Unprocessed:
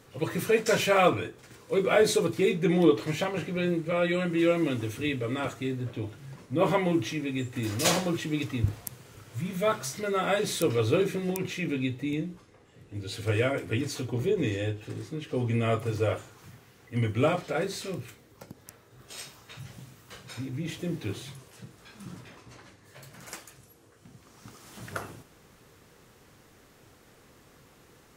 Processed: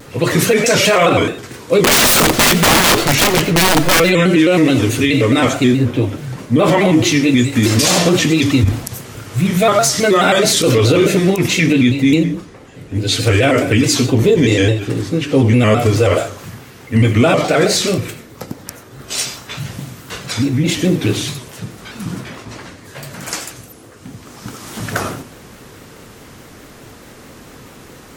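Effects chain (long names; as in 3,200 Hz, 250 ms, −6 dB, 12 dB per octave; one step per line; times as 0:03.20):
dynamic equaliser 5,700 Hz, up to +6 dB, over −50 dBFS, Q 0.73
0:01.83–0:04.00: wrap-around overflow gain 23 dB
parametric band 250 Hz +4.5 dB 0.39 octaves
convolution reverb RT60 0.40 s, pre-delay 50 ms, DRR 11 dB
boost into a limiter +20 dB
pitch modulation by a square or saw wave square 4.7 Hz, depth 100 cents
level −2.5 dB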